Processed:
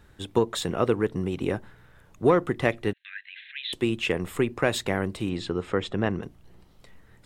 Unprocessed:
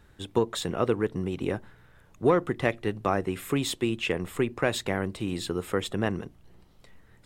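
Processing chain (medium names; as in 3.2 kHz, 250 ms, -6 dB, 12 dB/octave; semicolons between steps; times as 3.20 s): 2.93–3.73 s: Chebyshev band-pass 1.6–4 kHz, order 5; 5.29–6.23 s: distance through air 110 m; trim +2 dB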